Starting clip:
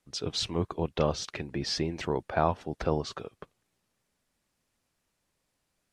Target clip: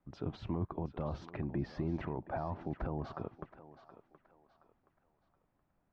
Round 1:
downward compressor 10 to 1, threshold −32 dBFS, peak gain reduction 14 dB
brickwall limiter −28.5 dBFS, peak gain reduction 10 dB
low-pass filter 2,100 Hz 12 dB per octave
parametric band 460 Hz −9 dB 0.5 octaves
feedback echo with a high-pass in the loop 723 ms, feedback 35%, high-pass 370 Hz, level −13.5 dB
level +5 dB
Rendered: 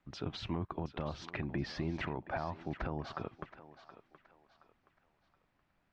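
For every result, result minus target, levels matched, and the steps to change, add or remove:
downward compressor: peak gain reduction +14 dB; 2,000 Hz band +8.5 dB
remove: downward compressor 10 to 1, threshold −32 dBFS, peak gain reduction 14 dB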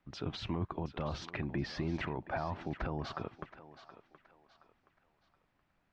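2,000 Hz band +7.5 dB
change: low-pass filter 980 Hz 12 dB per octave

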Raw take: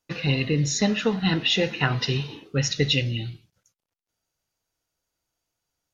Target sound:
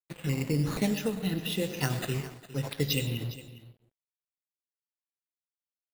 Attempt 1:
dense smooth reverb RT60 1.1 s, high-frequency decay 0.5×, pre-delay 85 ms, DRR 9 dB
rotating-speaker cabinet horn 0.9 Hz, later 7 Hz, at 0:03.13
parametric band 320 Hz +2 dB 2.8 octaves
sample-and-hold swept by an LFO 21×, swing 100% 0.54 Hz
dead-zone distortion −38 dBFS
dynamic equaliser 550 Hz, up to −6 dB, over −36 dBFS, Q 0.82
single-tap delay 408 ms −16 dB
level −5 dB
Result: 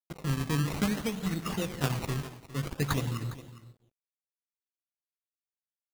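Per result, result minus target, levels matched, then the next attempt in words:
sample-and-hold swept by an LFO: distortion +5 dB; 500 Hz band −2.5 dB
dense smooth reverb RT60 1.1 s, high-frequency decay 0.5×, pre-delay 85 ms, DRR 9 dB
rotating-speaker cabinet horn 0.9 Hz, later 7 Hz, at 0:03.13
parametric band 320 Hz +2 dB 2.8 octaves
sample-and-hold swept by an LFO 6×, swing 100% 0.54 Hz
dead-zone distortion −38 dBFS
dynamic equaliser 550 Hz, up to −6 dB, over −36 dBFS, Q 0.82
single-tap delay 408 ms −16 dB
level −5 dB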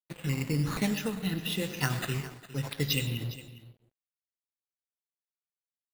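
500 Hz band −3.0 dB
dense smooth reverb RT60 1.1 s, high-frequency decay 0.5×, pre-delay 85 ms, DRR 9 dB
rotating-speaker cabinet horn 0.9 Hz, later 7 Hz, at 0:03.13
parametric band 320 Hz +2 dB 2.8 octaves
sample-and-hold swept by an LFO 6×, swing 100% 0.54 Hz
dead-zone distortion −38 dBFS
dynamic equaliser 1,200 Hz, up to −6 dB, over −36 dBFS, Q 0.82
single-tap delay 408 ms −16 dB
level −5 dB

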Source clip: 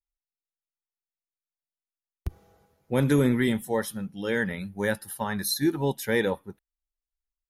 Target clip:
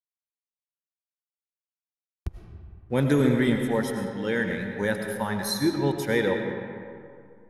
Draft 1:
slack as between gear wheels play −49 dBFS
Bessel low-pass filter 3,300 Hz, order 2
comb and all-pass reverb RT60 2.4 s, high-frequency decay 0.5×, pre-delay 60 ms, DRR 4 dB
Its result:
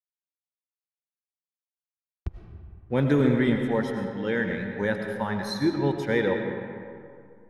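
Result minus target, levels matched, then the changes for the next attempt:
8,000 Hz band −11.5 dB
change: Bessel low-pass filter 9,400 Hz, order 2

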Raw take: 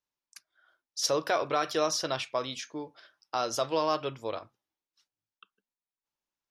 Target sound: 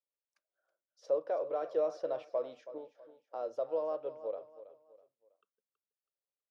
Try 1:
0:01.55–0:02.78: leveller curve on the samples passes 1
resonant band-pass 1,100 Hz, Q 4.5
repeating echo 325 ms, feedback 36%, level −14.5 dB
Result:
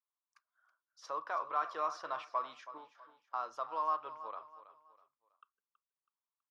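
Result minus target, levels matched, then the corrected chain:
1,000 Hz band +11.0 dB
0:01.55–0:02.78: leveller curve on the samples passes 1
resonant band-pass 530 Hz, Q 4.5
repeating echo 325 ms, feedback 36%, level −14.5 dB

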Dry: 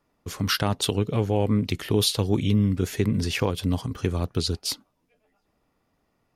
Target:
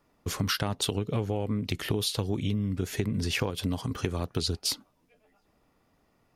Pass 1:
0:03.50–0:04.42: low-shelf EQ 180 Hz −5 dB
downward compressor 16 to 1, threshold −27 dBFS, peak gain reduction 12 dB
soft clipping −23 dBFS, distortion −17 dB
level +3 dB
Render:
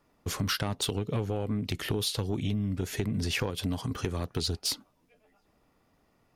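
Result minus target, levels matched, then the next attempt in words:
soft clipping: distortion +17 dB
0:03.50–0:04.42: low-shelf EQ 180 Hz −5 dB
downward compressor 16 to 1, threshold −27 dBFS, peak gain reduction 12 dB
soft clipping −12.5 dBFS, distortion −34 dB
level +3 dB

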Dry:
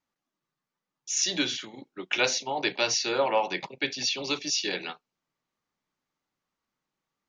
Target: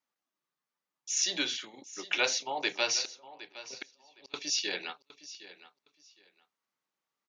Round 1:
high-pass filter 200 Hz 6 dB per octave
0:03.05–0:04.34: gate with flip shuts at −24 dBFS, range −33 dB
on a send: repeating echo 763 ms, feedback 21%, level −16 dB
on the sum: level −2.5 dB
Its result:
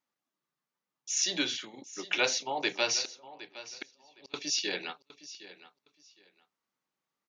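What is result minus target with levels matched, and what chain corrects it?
250 Hz band +3.5 dB
high-pass filter 460 Hz 6 dB per octave
0:03.05–0:04.34: gate with flip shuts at −24 dBFS, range −33 dB
on a send: repeating echo 763 ms, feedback 21%, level −16 dB
on the sum: level −2.5 dB

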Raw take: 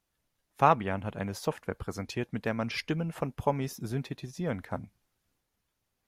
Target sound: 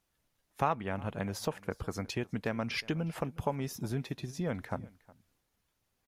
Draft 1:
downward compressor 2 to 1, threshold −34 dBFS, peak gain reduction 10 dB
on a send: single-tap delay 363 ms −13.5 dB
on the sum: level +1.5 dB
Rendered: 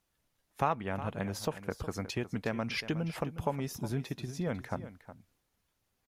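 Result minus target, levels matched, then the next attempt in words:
echo-to-direct +9 dB
downward compressor 2 to 1, threshold −34 dBFS, peak gain reduction 10 dB
on a send: single-tap delay 363 ms −22.5 dB
on the sum: level +1.5 dB

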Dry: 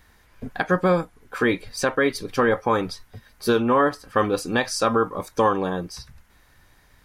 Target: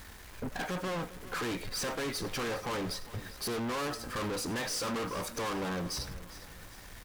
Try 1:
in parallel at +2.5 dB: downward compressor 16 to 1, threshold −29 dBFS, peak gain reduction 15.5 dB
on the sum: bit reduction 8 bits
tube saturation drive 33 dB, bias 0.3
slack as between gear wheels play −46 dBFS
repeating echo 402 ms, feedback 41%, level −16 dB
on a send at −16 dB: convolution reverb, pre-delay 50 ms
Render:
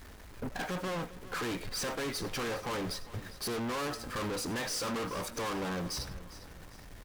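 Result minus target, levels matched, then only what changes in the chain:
slack as between gear wheels: distortion +10 dB
change: slack as between gear wheels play −56 dBFS

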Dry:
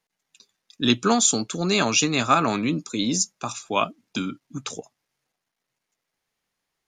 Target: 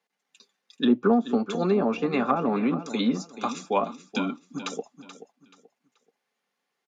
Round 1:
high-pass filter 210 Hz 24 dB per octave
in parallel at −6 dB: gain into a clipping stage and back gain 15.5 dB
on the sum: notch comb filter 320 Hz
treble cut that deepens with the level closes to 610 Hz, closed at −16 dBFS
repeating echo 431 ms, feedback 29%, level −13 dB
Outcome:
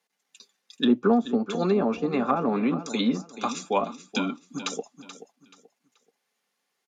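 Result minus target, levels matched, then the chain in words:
8,000 Hz band +4.0 dB
high-pass filter 210 Hz 24 dB per octave
high-shelf EQ 4,700 Hz −10 dB
in parallel at −6 dB: gain into a clipping stage and back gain 15.5 dB
on the sum: notch comb filter 320 Hz
treble cut that deepens with the level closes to 610 Hz, closed at −16 dBFS
repeating echo 431 ms, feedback 29%, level −13 dB

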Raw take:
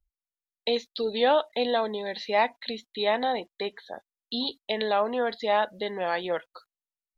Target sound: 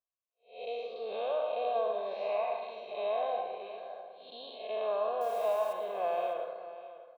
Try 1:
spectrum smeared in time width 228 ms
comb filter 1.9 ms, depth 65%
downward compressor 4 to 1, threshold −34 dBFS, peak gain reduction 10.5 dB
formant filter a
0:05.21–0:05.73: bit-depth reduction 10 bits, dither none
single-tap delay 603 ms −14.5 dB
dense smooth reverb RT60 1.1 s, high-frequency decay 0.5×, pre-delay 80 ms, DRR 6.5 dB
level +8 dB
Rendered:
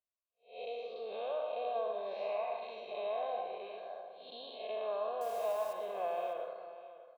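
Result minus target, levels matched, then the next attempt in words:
downward compressor: peak gain reduction +5 dB
spectrum smeared in time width 228 ms
comb filter 1.9 ms, depth 65%
downward compressor 4 to 1, threshold −27.5 dBFS, peak gain reduction 5.5 dB
formant filter a
0:05.21–0:05.73: bit-depth reduction 10 bits, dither none
single-tap delay 603 ms −14.5 dB
dense smooth reverb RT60 1.1 s, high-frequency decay 0.5×, pre-delay 80 ms, DRR 6.5 dB
level +8 dB

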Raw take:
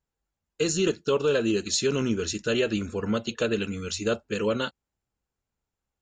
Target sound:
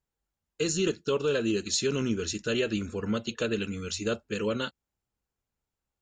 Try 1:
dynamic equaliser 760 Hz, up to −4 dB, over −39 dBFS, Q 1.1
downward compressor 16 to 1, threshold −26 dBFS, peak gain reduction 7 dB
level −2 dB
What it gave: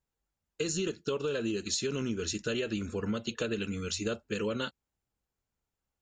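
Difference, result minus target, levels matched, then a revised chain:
downward compressor: peak gain reduction +7 dB
dynamic equaliser 760 Hz, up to −4 dB, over −39 dBFS, Q 1.1
level −2 dB

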